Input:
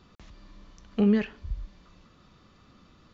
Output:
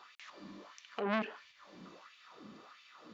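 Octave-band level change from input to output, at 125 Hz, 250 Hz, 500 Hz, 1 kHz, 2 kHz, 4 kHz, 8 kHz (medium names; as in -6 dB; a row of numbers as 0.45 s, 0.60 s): -17.5 dB, -16.0 dB, -8.0 dB, +6.0 dB, 0.0 dB, -1.0 dB, no reading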